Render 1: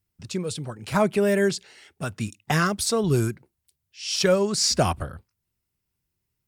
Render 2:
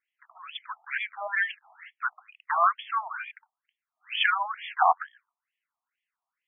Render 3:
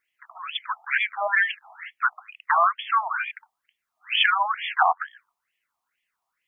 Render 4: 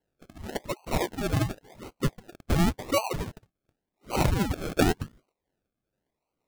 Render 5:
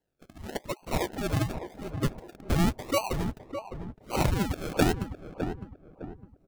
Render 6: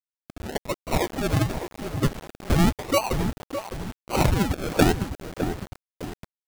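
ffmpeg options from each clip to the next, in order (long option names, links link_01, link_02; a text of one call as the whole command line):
ffmpeg -i in.wav -af "afftfilt=real='re*between(b*sr/1024,880*pow(2500/880,0.5+0.5*sin(2*PI*2.2*pts/sr))/1.41,880*pow(2500/880,0.5+0.5*sin(2*PI*2.2*pts/sr))*1.41)':imag='im*between(b*sr/1024,880*pow(2500/880,0.5+0.5*sin(2*PI*2.2*pts/sr))/1.41,880*pow(2500/880,0.5+0.5*sin(2*PI*2.2*pts/sr))*1.41)':win_size=1024:overlap=0.75,volume=7.5dB" out.wav
ffmpeg -i in.wav -af "acompressor=threshold=-25dB:ratio=5,volume=8.5dB" out.wav
ffmpeg -i in.wav -af "acrusher=samples=36:mix=1:aa=0.000001:lfo=1:lforange=21.6:lforate=0.91,volume=-3dB" out.wav
ffmpeg -i in.wav -filter_complex "[0:a]asplit=2[link_01][link_02];[link_02]adelay=608,lowpass=frequency=1100:poles=1,volume=-7.5dB,asplit=2[link_03][link_04];[link_04]adelay=608,lowpass=frequency=1100:poles=1,volume=0.38,asplit=2[link_05][link_06];[link_06]adelay=608,lowpass=frequency=1100:poles=1,volume=0.38,asplit=2[link_07][link_08];[link_08]adelay=608,lowpass=frequency=1100:poles=1,volume=0.38[link_09];[link_01][link_03][link_05][link_07][link_09]amix=inputs=5:normalize=0,volume=-1.5dB" out.wav
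ffmpeg -i in.wav -af "acrusher=bits=6:mix=0:aa=0.000001,volume=5dB" out.wav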